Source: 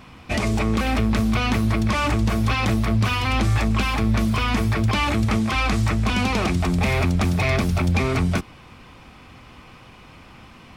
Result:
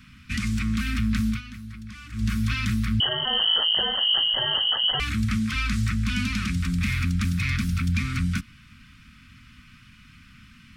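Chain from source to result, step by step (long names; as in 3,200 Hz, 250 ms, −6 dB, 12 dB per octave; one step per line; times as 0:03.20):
elliptic band-stop filter 240–1,400 Hz, stop band 70 dB
0:01.29–0:02.25: duck −14.5 dB, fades 0.13 s
0:03.00–0:05.00: voice inversion scrambler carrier 3,100 Hz
level −3 dB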